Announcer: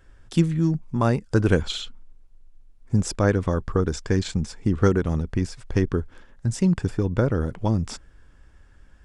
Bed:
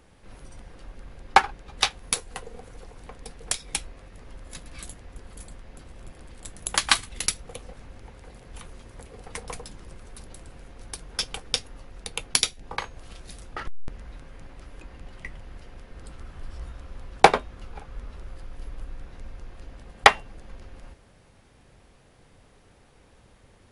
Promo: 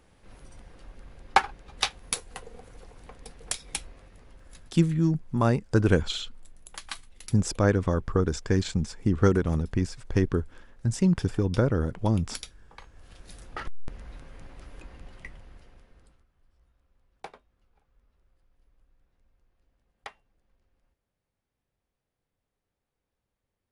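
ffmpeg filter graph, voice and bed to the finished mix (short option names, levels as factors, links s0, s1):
-filter_complex "[0:a]adelay=4400,volume=0.794[s0];[1:a]volume=4.22,afade=t=out:st=3.92:d=0.86:silence=0.199526,afade=t=in:st=12.86:d=0.73:silence=0.149624,afade=t=out:st=14.8:d=1.46:silence=0.0446684[s1];[s0][s1]amix=inputs=2:normalize=0"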